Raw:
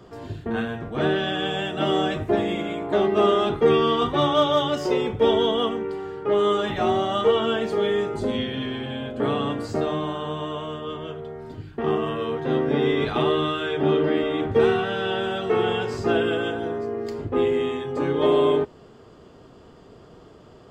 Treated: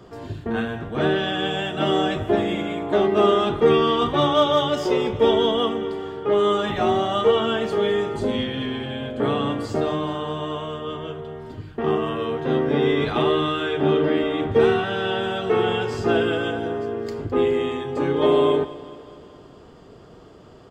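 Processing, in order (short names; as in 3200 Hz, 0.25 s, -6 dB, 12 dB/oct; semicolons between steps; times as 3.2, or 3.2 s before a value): feedback echo 0.211 s, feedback 59%, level -17 dB; gain +1.5 dB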